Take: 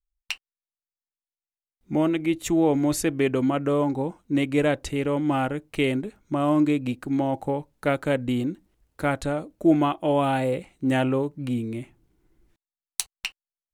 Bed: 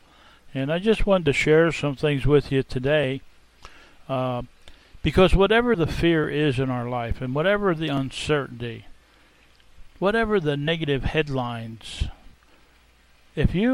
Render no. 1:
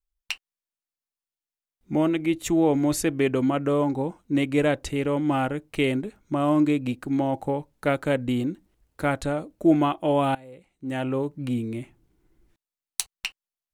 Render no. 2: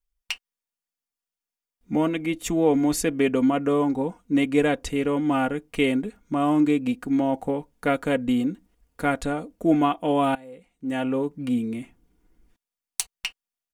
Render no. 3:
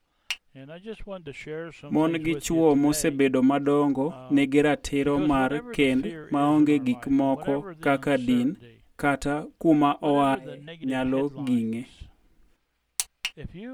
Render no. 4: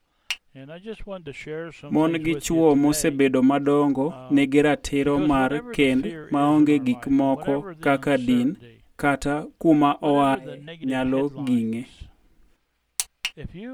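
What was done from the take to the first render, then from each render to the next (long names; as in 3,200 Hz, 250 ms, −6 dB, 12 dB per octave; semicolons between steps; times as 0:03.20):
0:10.35–0:11.29: fade in quadratic, from −22 dB
notch filter 4,000 Hz, Q 15; comb filter 4.2 ms, depth 55%
mix in bed −18 dB
level +2.5 dB; brickwall limiter −3 dBFS, peak gain reduction 1 dB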